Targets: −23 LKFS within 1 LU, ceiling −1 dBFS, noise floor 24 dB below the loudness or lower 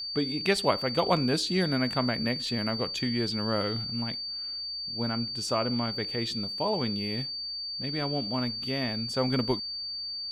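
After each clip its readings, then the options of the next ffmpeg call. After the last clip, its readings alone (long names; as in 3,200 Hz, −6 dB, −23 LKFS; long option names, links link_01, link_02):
interfering tone 4,600 Hz; level of the tone −33 dBFS; integrated loudness −29.0 LKFS; sample peak −10.5 dBFS; target loudness −23.0 LKFS
→ -af "bandreject=frequency=4600:width=30"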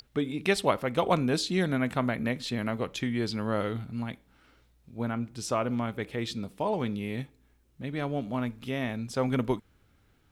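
interfering tone none found; integrated loudness −30.5 LKFS; sample peak −11.5 dBFS; target loudness −23.0 LKFS
→ -af "volume=7.5dB"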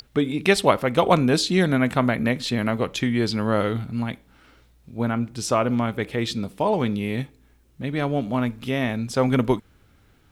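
integrated loudness −23.0 LKFS; sample peak −4.0 dBFS; background noise floor −58 dBFS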